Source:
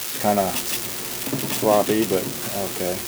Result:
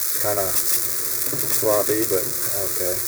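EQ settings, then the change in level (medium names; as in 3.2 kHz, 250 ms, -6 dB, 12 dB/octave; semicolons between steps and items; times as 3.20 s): peaking EQ 100 Hz +3.5 dB 0.7 oct; treble shelf 2.3 kHz +8 dB; static phaser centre 800 Hz, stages 6; 0.0 dB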